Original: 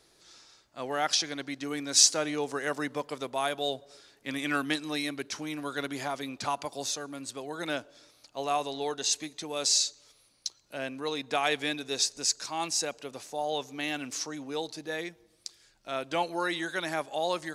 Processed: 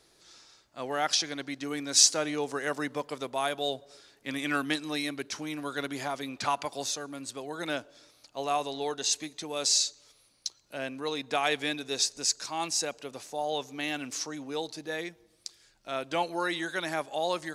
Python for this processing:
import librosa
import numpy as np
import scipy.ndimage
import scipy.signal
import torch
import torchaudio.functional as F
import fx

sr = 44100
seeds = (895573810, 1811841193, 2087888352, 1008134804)

y = fx.peak_eq(x, sr, hz=1900.0, db=5.0, octaves=2.0, at=(6.35, 6.84))